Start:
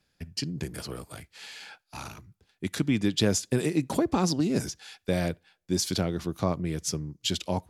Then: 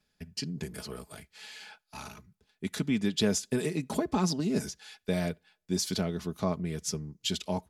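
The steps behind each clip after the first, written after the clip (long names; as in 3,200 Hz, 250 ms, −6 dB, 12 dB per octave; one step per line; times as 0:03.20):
comb filter 4.7 ms, depth 51%
level −4 dB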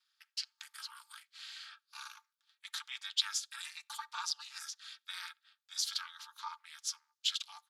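Chebyshev high-pass with heavy ripple 1,000 Hz, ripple 9 dB
ring modulation 150 Hz
level +5 dB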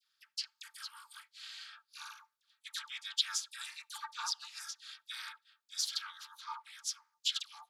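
all-pass dispersion lows, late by 97 ms, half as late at 970 Hz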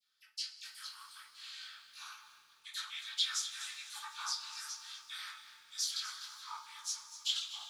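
multi-voice chorus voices 4, 1.3 Hz, delay 19 ms, depth 3.1 ms
coupled-rooms reverb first 0.25 s, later 3.6 s, from −20 dB, DRR 0 dB
feedback echo at a low word length 248 ms, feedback 35%, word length 10 bits, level −13 dB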